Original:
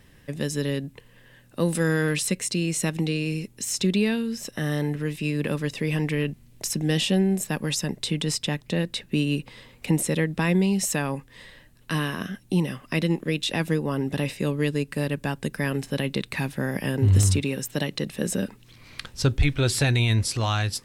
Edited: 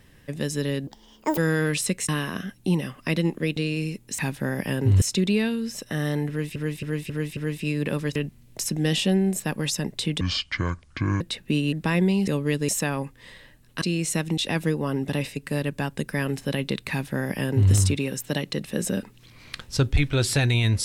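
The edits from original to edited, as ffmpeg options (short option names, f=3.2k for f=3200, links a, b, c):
-filter_complex "[0:a]asplit=20[a][b][c][d][e][f][g][h][i][j][k][l][m][n][o][p][q][r][s][t];[a]atrim=end=0.874[u];[b]atrim=start=0.87:end=1.79,asetpts=PTS-STARTPTS,asetrate=80262,aresample=44100,atrim=end_sample=22292,asetpts=PTS-STARTPTS[v];[c]atrim=start=1.786:end=2.502[w];[d]atrim=start=11.938:end=13.422[x];[e]atrim=start=3.058:end=3.682[y];[f]atrim=start=16.348:end=17.182[z];[g]atrim=start=3.678:end=5.222[aa];[h]atrim=start=4.948:end=5.222[ab];[i]atrim=start=4.948:end=5.222[ac];[j]atrim=start=4.948:end=5.222[ad];[k]atrim=start=4.948:end=5.742[ae];[l]atrim=start=6.198:end=8.254[af];[m]atrim=start=8.25:end=8.84,asetpts=PTS-STARTPTS,asetrate=26019,aresample=44100[ag];[n]atrim=start=8.836:end=9.362[ah];[o]atrim=start=10.258:end=10.812[ai];[p]atrim=start=14.408:end=14.822[aj];[q]atrim=start=10.808:end=11.942[ak];[r]atrim=start=2.498:end=3.062[al];[s]atrim=start=13.418:end=14.412[am];[t]atrim=start=14.818[an];[u][v]acrossfade=d=0.004:c1=hsin:c2=hsin[ao];[ao][w]acrossfade=d=0.004:c1=hsin:c2=hsin[ap];[ap][x]acrossfade=d=0.004:c1=hsin:c2=hsin[aq];[aq][y]acrossfade=d=0.004:c1=hsin:c2=hsin[ar];[ar][z]acrossfade=d=0.004:c1=hsin:c2=hsin[as];[as][aa]acrossfade=d=0.004:c1=hsin:c2=hsin[at];[at][ab]acrossfade=d=0.004:c1=hsin:c2=hsin[au];[au][ac]acrossfade=d=0.004:c1=hsin:c2=hsin[av];[av][ad]acrossfade=d=0.004:c1=hsin:c2=hsin[aw];[aw][ae]acrossfade=d=0.004:c1=hsin:c2=hsin[ax];[ax][af]acrossfade=d=0.004:c1=hsin:c2=hsin[ay];[ay][ag]acrossfade=d=0.004:c1=hsin:c2=hsin[az];[az][ah]acrossfade=d=0.004:c1=hsin:c2=hsin[ba];[ba][ai]acrossfade=d=0.004:c1=hsin:c2=hsin[bb];[bb][aj]acrossfade=d=0.004:c1=hsin:c2=hsin[bc];[bc][ak]acrossfade=d=0.004:c1=hsin:c2=hsin[bd];[bd][al]acrossfade=d=0.004:c1=hsin:c2=hsin[be];[be][am]acrossfade=d=0.004:c1=hsin:c2=hsin[bf];[bf][an]acrossfade=d=0.004:c1=hsin:c2=hsin"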